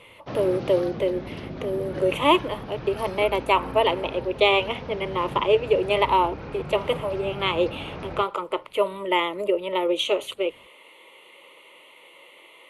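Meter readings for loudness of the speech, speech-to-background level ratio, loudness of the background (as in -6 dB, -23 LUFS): -24.5 LUFS, 12.0 dB, -36.5 LUFS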